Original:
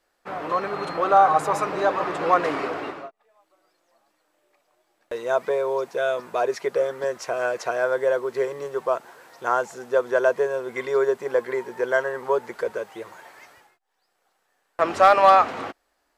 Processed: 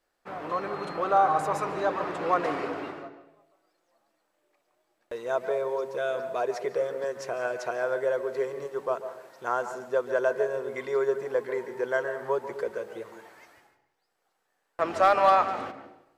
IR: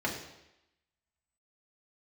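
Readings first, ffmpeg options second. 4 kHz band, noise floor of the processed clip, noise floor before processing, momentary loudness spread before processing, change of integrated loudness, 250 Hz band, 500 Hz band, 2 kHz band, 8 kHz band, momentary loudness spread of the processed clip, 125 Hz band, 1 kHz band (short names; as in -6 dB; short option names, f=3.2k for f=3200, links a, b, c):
-6.5 dB, -76 dBFS, -72 dBFS, 15 LU, -5.5 dB, -4.0 dB, -5.0 dB, -6.0 dB, n/a, 16 LU, -3.0 dB, -5.5 dB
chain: -filter_complex "[0:a]lowshelf=f=370:g=3,asplit=2[a][b];[1:a]atrim=start_sample=2205,adelay=140[c];[b][c]afir=irnorm=-1:irlink=0,volume=-18dB[d];[a][d]amix=inputs=2:normalize=0,volume=-6.5dB"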